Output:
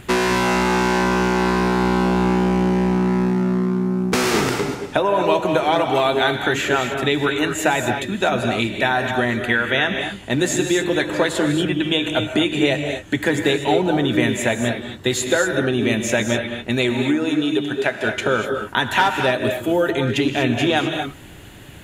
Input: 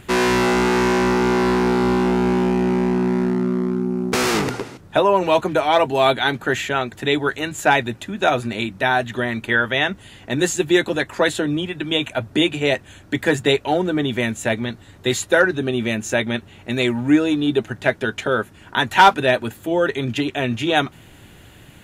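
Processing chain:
downward compressor, threshold −18 dBFS, peak gain reduction 11 dB
0:16.93–0:18.04: high-pass filter 170 Hz → 440 Hz 6 dB per octave
reverb whose tail is shaped and stops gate 270 ms rising, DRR 4.5 dB
level +3 dB

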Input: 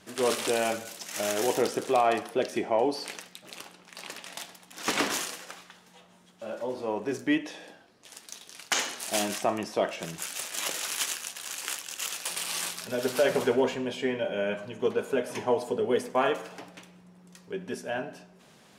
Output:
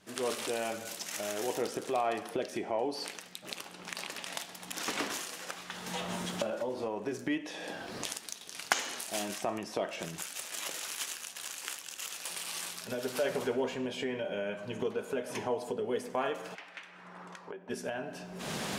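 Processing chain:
camcorder AGC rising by 50 dB per second
0:16.54–0:17.69: resonant band-pass 2,400 Hz → 780 Hz, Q 1.6
level −7.5 dB

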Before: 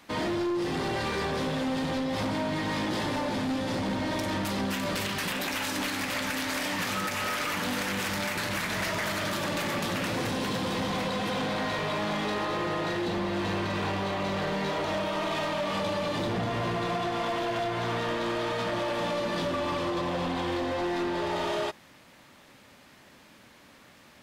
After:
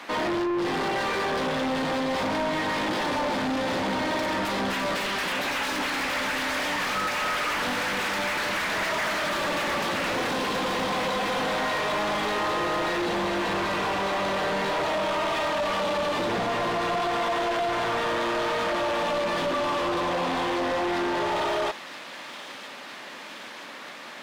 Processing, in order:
high-pass filter 170 Hz 12 dB per octave
mid-hump overdrive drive 24 dB, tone 2,100 Hz, clips at −19.5 dBFS
delay with a high-pass on its return 972 ms, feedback 75%, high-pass 3,000 Hz, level −8.5 dB

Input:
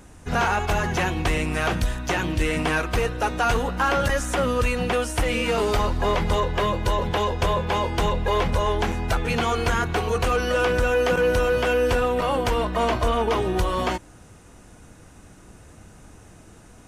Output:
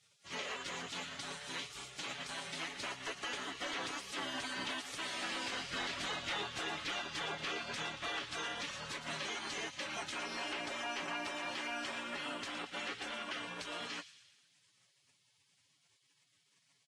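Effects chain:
source passing by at 0:06.30, 16 m/s, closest 4.9 metres
high-pass filter 560 Hz 12 dB per octave
gate on every frequency bin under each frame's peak −15 dB weak
parametric band 9,400 Hz +6.5 dB 0.84 octaves
comb filter 7.1 ms, depth 43%
downward compressor 6 to 1, threshold −57 dBFS, peak gain reduction 24.5 dB
sine wavefolder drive 10 dB, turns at −40.5 dBFS
high-frequency loss of the air 120 metres
delay with a high-pass on its return 116 ms, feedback 56%, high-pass 3,400 Hz, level −9 dB
level +9.5 dB
Ogg Vorbis 48 kbit/s 48,000 Hz

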